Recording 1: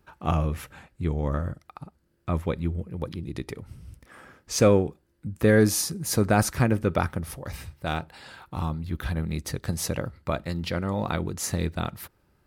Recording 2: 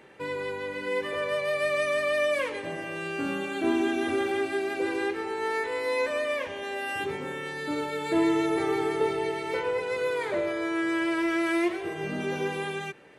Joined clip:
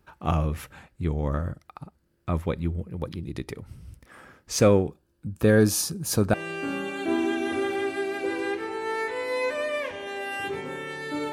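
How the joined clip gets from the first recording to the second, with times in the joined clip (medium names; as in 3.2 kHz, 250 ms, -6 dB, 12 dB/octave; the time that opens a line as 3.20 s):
recording 1
4.90–6.34 s: band-stop 2 kHz, Q 5.1
6.34 s: go over to recording 2 from 2.90 s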